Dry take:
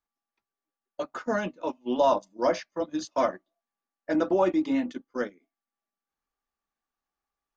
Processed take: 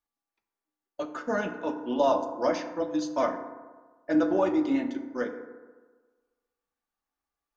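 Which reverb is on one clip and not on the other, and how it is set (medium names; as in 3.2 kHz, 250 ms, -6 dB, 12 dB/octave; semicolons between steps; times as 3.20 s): FDN reverb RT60 1.4 s, low-frequency decay 0.9×, high-frequency decay 0.35×, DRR 5 dB; trim -2 dB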